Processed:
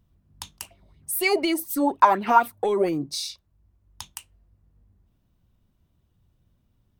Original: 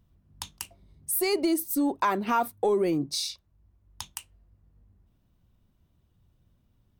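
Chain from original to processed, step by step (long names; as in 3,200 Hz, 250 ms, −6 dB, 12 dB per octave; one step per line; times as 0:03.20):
0:00.62–0:02.89: auto-filter bell 4.1 Hz 600–3,100 Hz +16 dB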